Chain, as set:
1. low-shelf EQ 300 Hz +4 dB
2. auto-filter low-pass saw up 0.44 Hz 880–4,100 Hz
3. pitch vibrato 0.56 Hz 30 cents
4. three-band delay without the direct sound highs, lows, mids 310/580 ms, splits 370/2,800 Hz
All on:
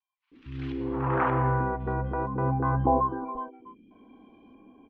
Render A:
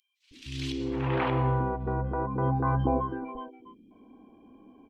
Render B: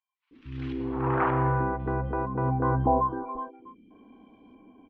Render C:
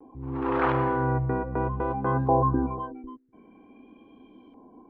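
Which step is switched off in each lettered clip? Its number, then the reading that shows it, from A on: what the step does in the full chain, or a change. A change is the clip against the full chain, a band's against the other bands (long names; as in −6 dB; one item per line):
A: 2, change in integrated loudness −1.5 LU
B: 3, change in crest factor −2.5 dB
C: 4, echo-to-direct ratio 11.5 dB to none audible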